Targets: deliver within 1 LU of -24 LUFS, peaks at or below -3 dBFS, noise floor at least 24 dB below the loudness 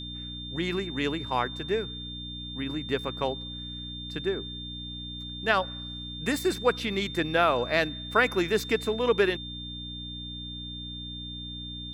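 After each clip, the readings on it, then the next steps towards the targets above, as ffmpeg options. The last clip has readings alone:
hum 60 Hz; harmonics up to 300 Hz; hum level -38 dBFS; steady tone 3600 Hz; tone level -38 dBFS; loudness -29.5 LUFS; peak -8.5 dBFS; loudness target -24.0 LUFS
-> -af "bandreject=f=60:t=h:w=4,bandreject=f=120:t=h:w=4,bandreject=f=180:t=h:w=4,bandreject=f=240:t=h:w=4,bandreject=f=300:t=h:w=4"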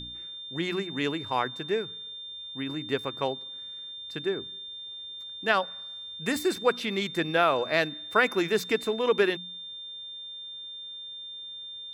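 hum none; steady tone 3600 Hz; tone level -38 dBFS
-> -af "bandreject=f=3.6k:w=30"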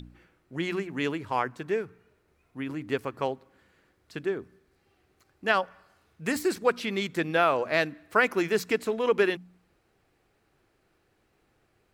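steady tone none; loudness -28.5 LUFS; peak -8.5 dBFS; loudness target -24.0 LUFS
-> -af "volume=4.5dB"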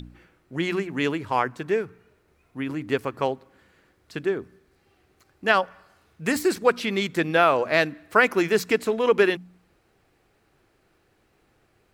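loudness -24.0 LUFS; peak -4.0 dBFS; noise floor -66 dBFS

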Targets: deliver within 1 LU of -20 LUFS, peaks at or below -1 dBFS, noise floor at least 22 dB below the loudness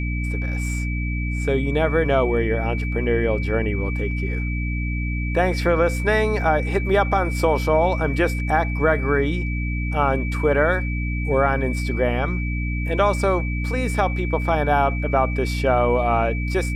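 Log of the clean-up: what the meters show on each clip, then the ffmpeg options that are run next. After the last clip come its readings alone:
hum 60 Hz; harmonics up to 300 Hz; hum level -22 dBFS; steady tone 2300 Hz; tone level -31 dBFS; loudness -21.5 LUFS; peak -5.0 dBFS; loudness target -20.0 LUFS
-> -af "bandreject=f=60:t=h:w=6,bandreject=f=120:t=h:w=6,bandreject=f=180:t=h:w=6,bandreject=f=240:t=h:w=6,bandreject=f=300:t=h:w=6"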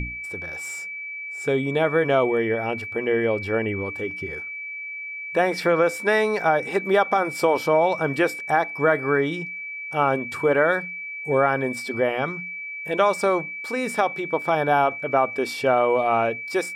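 hum none; steady tone 2300 Hz; tone level -31 dBFS
-> -af "bandreject=f=2.3k:w=30"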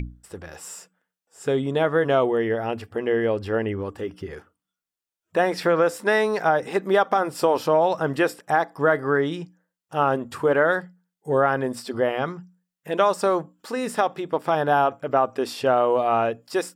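steady tone none; loudness -23.0 LUFS; peak -7.0 dBFS; loudness target -20.0 LUFS
-> -af "volume=3dB"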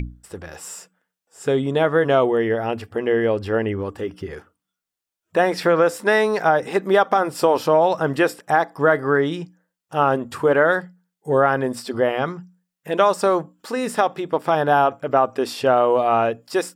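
loudness -20.0 LUFS; peak -4.0 dBFS; noise floor -85 dBFS

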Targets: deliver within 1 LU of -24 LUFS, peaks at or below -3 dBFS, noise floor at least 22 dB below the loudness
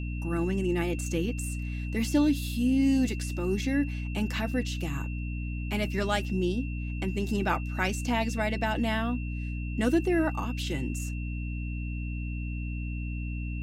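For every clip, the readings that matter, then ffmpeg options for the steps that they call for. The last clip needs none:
hum 60 Hz; harmonics up to 300 Hz; hum level -31 dBFS; steady tone 2700 Hz; tone level -44 dBFS; loudness -30.0 LUFS; peak -13.5 dBFS; loudness target -24.0 LUFS
-> -af "bandreject=f=60:t=h:w=4,bandreject=f=120:t=h:w=4,bandreject=f=180:t=h:w=4,bandreject=f=240:t=h:w=4,bandreject=f=300:t=h:w=4"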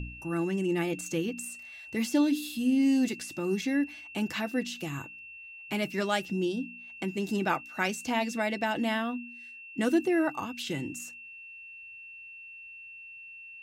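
hum none; steady tone 2700 Hz; tone level -44 dBFS
-> -af "bandreject=f=2.7k:w=30"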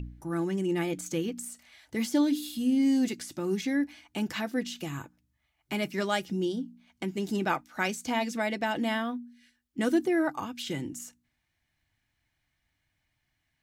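steady tone none; loudness -30.5 LUFS; peak -14.5 dBFS; loudness target -24.0 LUFS
-> -af "volume=6.5dB"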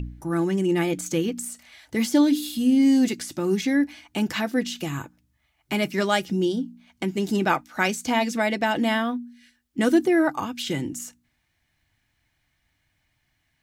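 loudness -24.0 LUFS; peak -8.0 dBFS; noise floor -72 dBFS

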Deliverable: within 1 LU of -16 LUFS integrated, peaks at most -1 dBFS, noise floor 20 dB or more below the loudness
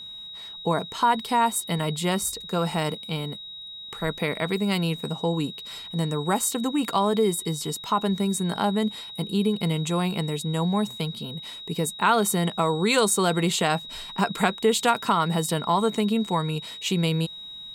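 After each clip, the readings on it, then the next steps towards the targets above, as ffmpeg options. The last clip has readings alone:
steady tone 3800 Hz; tone level -37 dBFS; loudness -25.0 LUFS; peak -7.0 dBFS; loudness target -16.0 LUFS
-> -af "bandreject=f=3.8k:w=30"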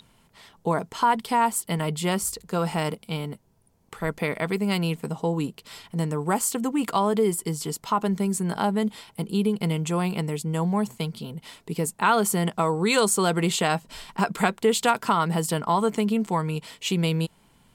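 steady tone none; loudness -25.5 LUFS; peak -7.0 dBFS; loudness target -16.0 LUFS
-> -af "volume=9.5dB,alimiter=limit=-1dB:level=0:latency=1"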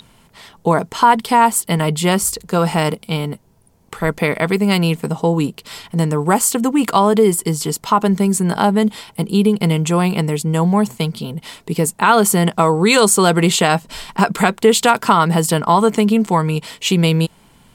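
loudness -16.0 LUFS; peak -1.0 dBFS; noise floor -52 dBFS

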